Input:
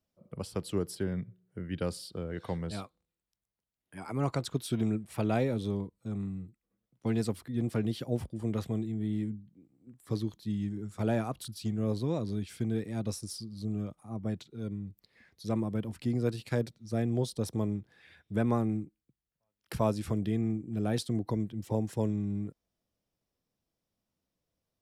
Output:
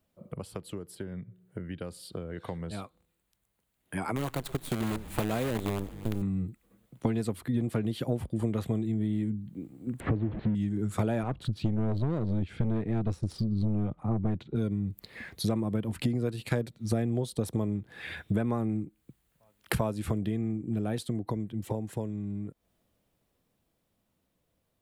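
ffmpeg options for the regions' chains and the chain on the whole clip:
-filter_complex "[0:a]asettb=1/sr,asplit=3[a][b][c];[a]atrim=end=4.164[d];[b]atrim=start=4.16:end=6.22,asetpts=PTS-STARTPTS,afade=t=in:d=0.004:c=qsin,afade=t=out:st=2.056:d=0.004:c=qsin,acrusher=bits=6:dc=4:mix=0:aa=0.000001,asplit=5[e][f][g][h][i];[f]adelay=124,afreqshift=-150,volume=-22dB[j];[g]adelay=248,afreqshift=-300,volume=-26.7dB[k];[h]adelay=372,afreqshift=-450,volume=-31.5dB[l];[i]adelay=496,afreqshift=-600,volume=-36.2dB[m];[e][j][k][l][m]amix=inputs=5:normalize=0,atrim=end_sample=90846[n];[c]atrim=start=6.216[o];[d][n]acrossfade=d=0.004:c1=hsin:c2=qsin[p];[p][o]acrossfade=d=0.004:c1=qsin:c2=hsin,asettb=1/sr,asplit=3[q][r][s];[q]atrim=end=10.004[t];[r]atrim=start=10:end=10.55,asetpts=PTS-STARTPTS,afade=t=in:d=0.004:c=qsin,afade=t=out:st=0.546:d=0.004:c=qsin,aeval=exprs='val(0)+0.5*0.0188*sgn(val(0))':c=same,lowpass=f=1.9k:w=0.5412,lowpass=f=1.9k:w=1.3066,equalizer=f=1.2k:w=0.92:g=-11[u];[s]atrim=start=10.546[v];[t][u]acrossfade=d=0.004:c1=hsin:c2=qsin[w];[w][v]acrossfade=d=0.004:c1=qsin:c2=hsin,asettb=1/sr,asplit=3[x][y][z];[x]atrim=end=11.234[aa];[y]atrim=start=11.23:end=14.56,asetpts=PTS-STARTPTS,afade=t=in:d=0.004:c=qsin,afade=t=out:st=3.326:d=0.004:c=qsin,lowshelf=f=220:g=8.5,adynamicsmooth=sensitivity=5:basefreq=2.7k,aeval=exprs='(tanh(22.4*val(0)+0.5)-tanh(0.5))/22.4':c=same[ab];[z]atrim=start=14.556[ac];[aa][ab]acrossfade=d=0.004:c1=hsin:c2=qsin[ad];[ad][ac]acrossfade=d=0.004:c1=qsin:c2=hsin,acompressor=threshold=-44dB:ratio=12,equalizer=f=5.4k:t=o:w=0.55:g=-8.5,dynaudnorm=f=920:g=9:m=9.5dB,volume=9dB"

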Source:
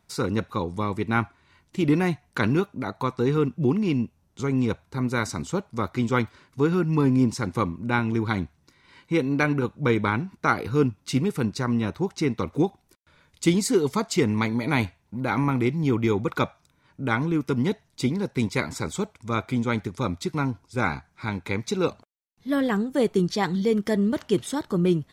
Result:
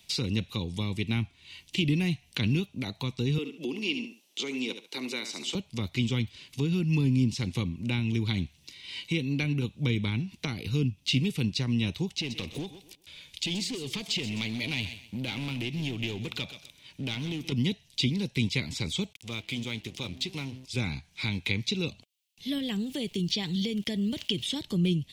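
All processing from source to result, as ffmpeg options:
-filter_complex "[0:a]asettb=1/sr,asplit=3[a][b][c];[a]atrim=end=3.384[d];[b]atrim=start=3.38:end=5.55,asetpts=PTS-STARTPTS,afade=t=in:d=0.004:c=qsin,afade=t=out:st=2.166:d=0.004:c=qsin,highpass=f=290:w=0.5412,highpass=f=290:w=1.3066,aecho=1:1:70|140:0.282|0.0479,atrim=end_sample=95697[e];[c]atrim=start=5.546[f];[d][e]acrossfade=d=0.004:c1=hsin:c2=qsin[g];[g][f]acrossfade=d=0.004:c1=qsin:c2=hsin,asettb=1/sr,asplit=3[h][i][j];[h]atrim=end=12.114[k];[i]atrim=start=12.11:end=17.52,asetpts=PTS-STARTPTS,afade=t=in:d=0.004:c=qsin,afade=t=out:st=5.406:d=0.004:c=qsin,acompressor=threshold=-30dB:ratio=2.5:attack=3.2:release=140:knee=1:detection=peak,volume=28dB,asoftclip=hard,volume=-28dB,aecho=1:1:127|254|381:0.158|0.0412|0.0107,atrim=end_sample=238581[l];[j]atrim=start=17.516[m];[k][l]acrossfade=d=0.004:c1=hsin:c2=qsin[n];[n][m]acrossfade=d=0.004:c1=qsin:c2=hsin,asettb=1/sr,asplit=3[o][p][q];[o]atrim=end=19.134[r];[p]atrim=start=19.13:end=20.65,asetpts=PTS-STARTPTS,afade=t=in:d=0.004:c=qsin,afade=t=out:st=1.516:d=0.004:c=qsin,bandreject=f=64.47:t=h:w=4,bandreject=f=128.94:t=h:w=4,bandreject=f=193.41:t=h:w=4,bandreject=f=257.88:t=h:w=4,bandreject=f=322.35:t=h:w=4,bandreject=f=386.82:t=h:w=4,acompressor=threshold=-44dB:ratio=1.5:attack=3.2:release=140:knee=1:detection=peak,aeval=exprs='sgn(val(0))*max(abs(val(0))-0.00266,0)':c=same[s];[q]atrim=start=20.646[t];[r][s]acrossfade=d=0.004:c1=hsin:c2=qsin[u];[u][t]acrossfade=d=0.004:c1=qsin:c2=hsin,asettb=1/sr,asplit=3[v][w][x];[v]atrim=end=22.584[y];[w]atrim=start=22.58:end=24.56,asetpts=PTS-STARTPTS,afade=t=in:d=0.004:c=qsin,afade=t=out:st=1.976:d=0.004:c=qsin,acompressor=threshold=-27dB:ratio=1.5:attack=3.2:release=140:knee=1:detection=peak,aeval=exprs='val(0)*gte(abs(val(0)),0.00251)':c=same[z];[x]atrim=start=24.556[aa];[y][z]acrossfade=d=0.004:c1=hsin:c2=qsin[ab];[ab][aa]acrossfade=d=0.004:c1=qsin:c2=hsin,acrossover=split=230[ac][ad];[ad]acompressor=threshold=-37dB:ratio=6[ae];[ac][ae]amix=inputs=2:normalize=0,highshelf=f=2k:t=q:w=3:g=13,acrossover=split=4600[af][ag];[ag]acompressor=threshold=-44dB:ratio=4:attack=1:release=60[ah];[af][ah]amix=inputs=2:normalize=0"

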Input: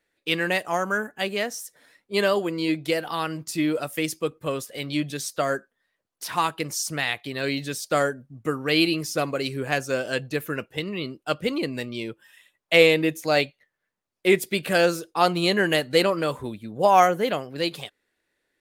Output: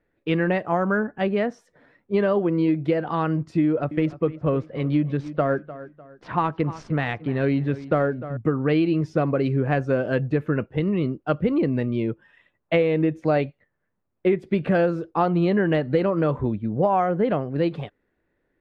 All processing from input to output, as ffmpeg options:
-filter_complex "[0:a]asettb=1/sr,asplit=3[a][b][c];[a]atrim=end=3.614[d];[b]atrim=start=3.61:end=8.37,asetpts=PTS-STARTPTS,afade=t=in:d=0.004:c=qsin,afade=t=out:st=4.756:d=0.004:c=qsin,adynamicsmooth=sensitivity=4.5:basefreq=3.4k,asplit=2[e][f];[f]adelay=300,lowpass=f=4.2k:p=1,volume=-17.5dB,asplit=2[g][h];[h]adelay=300,lowpass=f=4.2k:p=1,volume=0.35,asplit=2[i][j];[j]adelay=300,lowpass=f=4.2k:p=1,volume=0.35[k];[e][g][i][k]amix=inputs=4:normalize=0,atrim=end_sample=209916[l];[c]atrim=start=8.366[m];[d][l]acrossfade=d=0.004:c1=hsin:c2=qsin[n];[n][m]acrossfade=d=0.004:c1=qsin:c2=hsin,lowpass=1.6k,lowshelf=f=300:g=11.5,acompressor=threshold=-19dB:ratio=10,volume=2.5dB"

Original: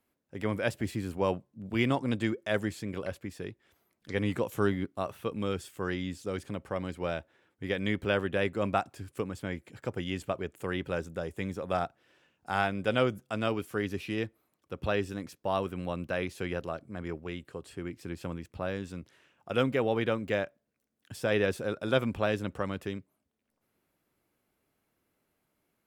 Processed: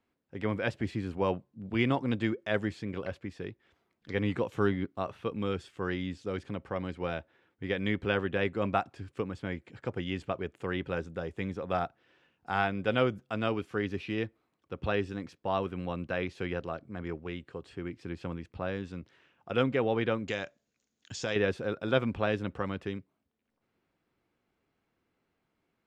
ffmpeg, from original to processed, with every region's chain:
-filter_complex "[0:a]asettb=1/sr,asplit=3[a][b][c];[a]atrim=end=20.284[d];[b]atrim=start=20.28:end=21.36,asetpts=PTS-STARTPTS,afade=t=in:d=0.004:c=qsin,afade=t=out:st=1.076:d=0.004:c=qsin,lowpass=f=6.8k:t=q:w=9.5,equalizer=f=4.1k:w=0.78:g=7.5,acompressor=threshold=-29dB:ratio=2.5:attack=3.2:release=140:knee=1:detection=peak[e];[c]atrim=start=21.356[f];[d][e]acrossfade=d=0.004:c1=hsin:c2=qsin[g];[g][f]acrossfade=d=0.004:c1=qsin:c2=hsin,lowpass=4.3k,bandreject=f=600:w=14"

